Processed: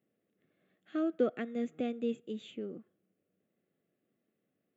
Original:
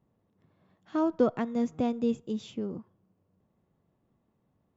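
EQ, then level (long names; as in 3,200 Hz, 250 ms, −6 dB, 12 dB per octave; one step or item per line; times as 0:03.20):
high-pass filter 320 Hz 12 dB per octave
phaser with its sweep stopped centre 2,300 Hz, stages 4
0.0 dB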